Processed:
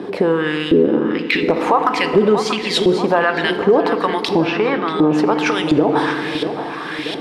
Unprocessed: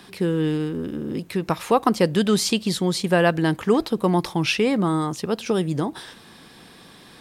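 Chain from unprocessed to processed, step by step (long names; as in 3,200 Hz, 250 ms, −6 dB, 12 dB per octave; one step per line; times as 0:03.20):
0:00.85–0:01.43: Chebyshev band-pass filter 120–4,400 Hz, order 2
0:02.17–0:02.78: comb filter 5.3 ms, depth 79%
downward compressor 8 to 1, threshold −27 dBFS, peak gain reduction 16.5 dB
auto-filter band-pass saw up 1.4 Hz 350–3,400 Hz
hard clipping −26.5 dBFS, distortion −27 dB
0:04.31–0:05.10: high-frequency loss of the air 140 metres
delay with a low-pass on its return 637 ms, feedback 59%, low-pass 3,800 Hz, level −13.5 dB
feedback delay network reverb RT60 1.7 s, low-frequency decay 1.5×, high-frequency decay 0.65×, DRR 9.5 dB
boost into a limiter +31 dB
level −3.5 dB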